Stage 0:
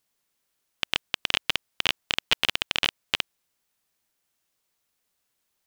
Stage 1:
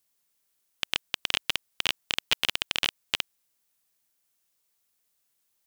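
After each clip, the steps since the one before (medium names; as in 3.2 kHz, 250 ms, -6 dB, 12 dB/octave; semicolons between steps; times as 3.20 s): treble shelf 5.6 kHz +8.5 dB; trim -4 dB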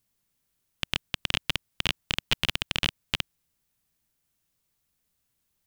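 tone controls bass +14 dB, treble -3 dB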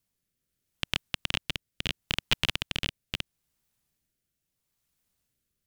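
rotary cabinet horn 0.75 Hz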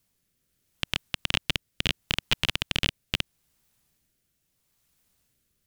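peak limiter -14.5 dBFS, peak gain reduction 7 dB; trim +7.5 dB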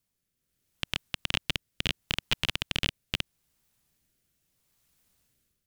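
level rider gain up to 8 dB; trim -8 dB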